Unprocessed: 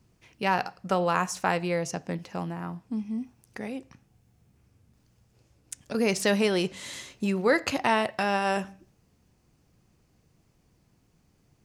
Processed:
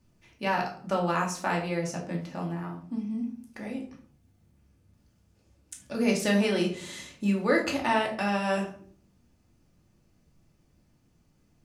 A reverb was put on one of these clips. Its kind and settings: shoebox room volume 430 m³, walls furnished, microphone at 2.5 m; gain -5.5 dB

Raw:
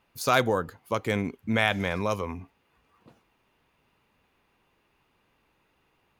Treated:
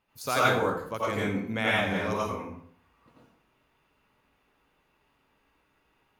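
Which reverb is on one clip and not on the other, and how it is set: plate-style reverb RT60 0.61 s, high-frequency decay 0.7×, pre-delay 75 ms, DRR -7 dB; gain -7.5 dB

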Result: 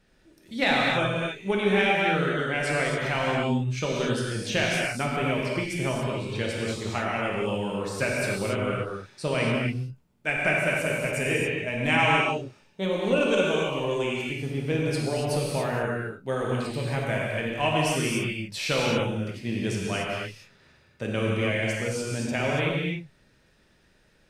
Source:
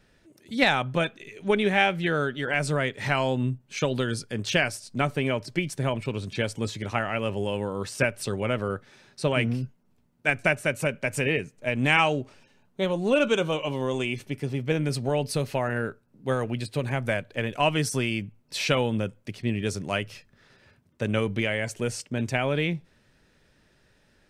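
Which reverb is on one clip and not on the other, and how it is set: non-linear reverb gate 0.31 s flat, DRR -4 dB; gain -4.5 dB

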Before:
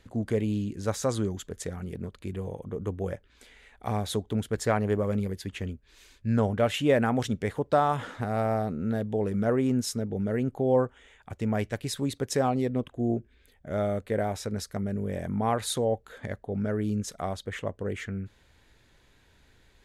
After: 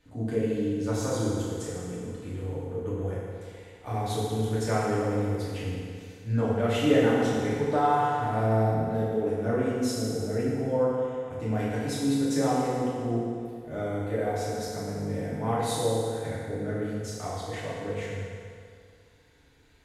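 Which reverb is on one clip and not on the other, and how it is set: FDN reverb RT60 2.3 s, low-frequency decay 0.8×, high-frequency decay 0.8×, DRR -9.5 dB; gain -9.5 dB

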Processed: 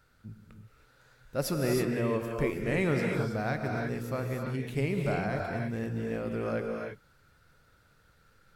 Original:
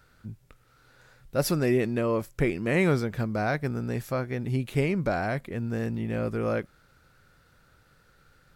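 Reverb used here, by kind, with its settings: non-linear reverb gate 0.35 s rising, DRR 1 dB; gain -5.5 dB

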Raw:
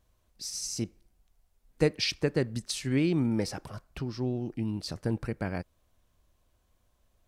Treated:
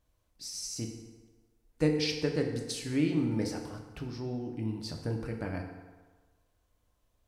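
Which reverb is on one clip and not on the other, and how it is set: FDN reverb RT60 1.4 s, low-frequency decay 0.8×, high-frequency decay 0.65×, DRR 2 dB; gain -5 dB

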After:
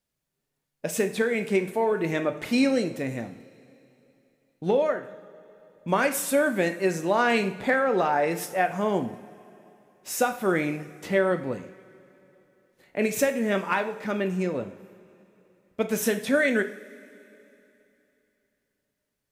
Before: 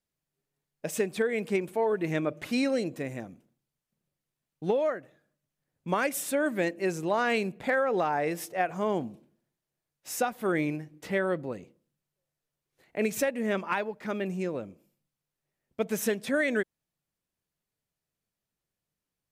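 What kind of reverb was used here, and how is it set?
two-slope reverb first 0.45 s, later 3.2 s, from -19 dB, DRR 6.5 dB; gain +3.5 dB

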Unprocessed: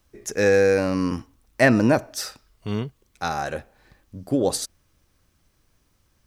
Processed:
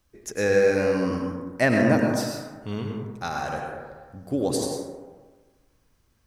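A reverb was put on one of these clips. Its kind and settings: plate-style reverb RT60 1.4 s, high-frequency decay 0.35×, pre-delay 85 ms, DRR 0.5 dB; gain -4.5 dB

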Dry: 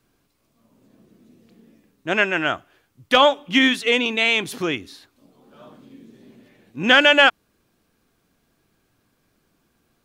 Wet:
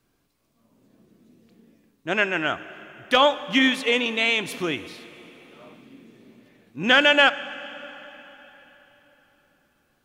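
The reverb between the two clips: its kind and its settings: plate-style reverb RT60 4.1 s, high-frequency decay 0.85×, DRR 14 dB; gain -3 dB

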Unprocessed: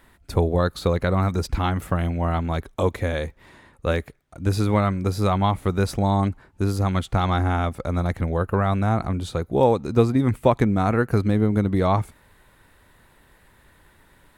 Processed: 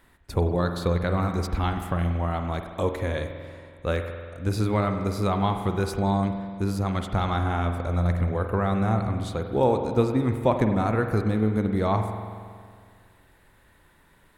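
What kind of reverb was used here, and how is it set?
spring tank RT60 2 s, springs 46 ms, chirp 50 ms, DRR 5.5 dB; gain -4 dB

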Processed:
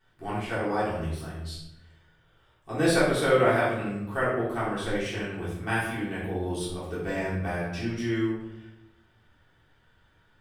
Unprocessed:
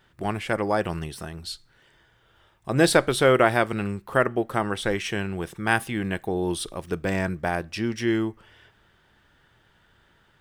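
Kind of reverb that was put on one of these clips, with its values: shoebox room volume 240 m³, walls mixed, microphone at 3.5 m; gain -14.5 dB

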